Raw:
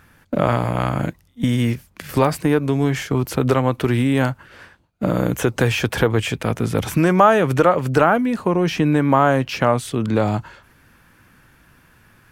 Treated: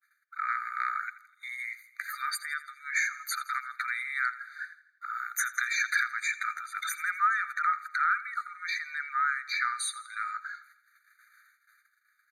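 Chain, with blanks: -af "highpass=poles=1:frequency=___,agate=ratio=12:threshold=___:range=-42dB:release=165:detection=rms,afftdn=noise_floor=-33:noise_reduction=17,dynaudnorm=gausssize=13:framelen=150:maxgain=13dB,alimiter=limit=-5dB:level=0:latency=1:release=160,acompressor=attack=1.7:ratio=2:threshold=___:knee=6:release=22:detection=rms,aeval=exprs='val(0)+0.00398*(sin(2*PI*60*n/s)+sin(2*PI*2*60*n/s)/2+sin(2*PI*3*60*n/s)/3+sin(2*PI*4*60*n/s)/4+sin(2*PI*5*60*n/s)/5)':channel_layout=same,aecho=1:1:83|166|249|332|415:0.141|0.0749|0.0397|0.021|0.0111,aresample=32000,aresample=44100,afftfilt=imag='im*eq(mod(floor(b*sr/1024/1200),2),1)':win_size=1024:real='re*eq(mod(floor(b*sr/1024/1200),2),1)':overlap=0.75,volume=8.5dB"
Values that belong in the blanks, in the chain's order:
150, -51dB, -35dB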